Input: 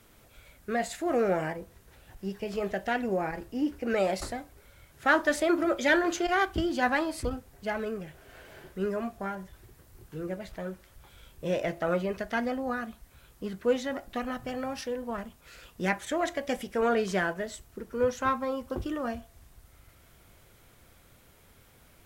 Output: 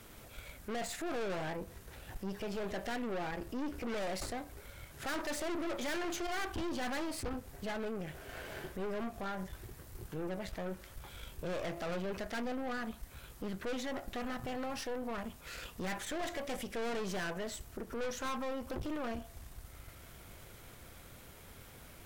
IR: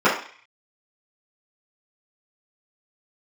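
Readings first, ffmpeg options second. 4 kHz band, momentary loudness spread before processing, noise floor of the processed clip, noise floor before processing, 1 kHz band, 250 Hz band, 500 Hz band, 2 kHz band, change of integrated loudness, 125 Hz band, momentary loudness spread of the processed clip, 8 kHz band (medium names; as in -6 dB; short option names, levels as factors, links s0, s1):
-4.0 dB, 14 LU, -54 dBFS, -59 dBFS, -9.5 dB, -8.0 dB, -9.5 dB, -10.5 dB, -9.5 dB, -5.5 dB, 15 LU, -2.5 dB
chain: -af "aeval=exprs='(tanh(63.1*val(0)+0.7)-tanh(0.7))/63.1':c=same,alimiter=level_in=6.31:limit=0.0631:level=0:latency=1:release=97,volume=0.158,volume=2.66"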